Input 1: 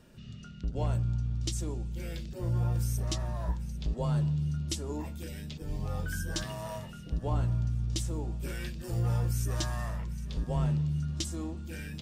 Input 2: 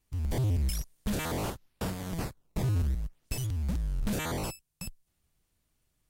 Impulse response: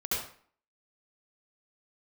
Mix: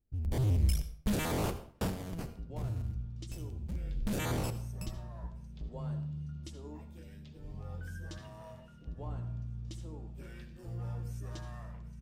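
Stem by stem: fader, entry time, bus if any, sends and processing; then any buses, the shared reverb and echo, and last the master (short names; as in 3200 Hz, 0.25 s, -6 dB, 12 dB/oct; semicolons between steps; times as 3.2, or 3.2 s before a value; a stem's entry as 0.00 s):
-15.5 dB, 1.75 s, send -15 dB, high shelf 3500 Hz -9.5 dB
1.86 s -4 dB -> 2.54 s -16.5 dB -> 3.5 s -16.5 dB -> 4.24 s -5.5 dB, 0.00 s, send -16.5 dB, Wiener smoothing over 41 samples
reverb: on, RT60 0.50 s, pre-delay 64 ms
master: AGC gain up to 4 dB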